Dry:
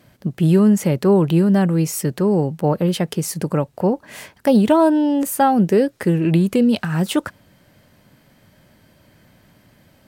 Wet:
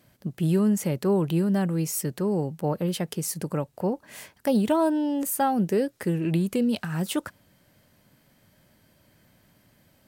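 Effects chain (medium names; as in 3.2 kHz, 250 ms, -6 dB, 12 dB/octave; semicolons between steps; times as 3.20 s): treble shelf 6.1 kHz +7 dB; trim -8.5 dB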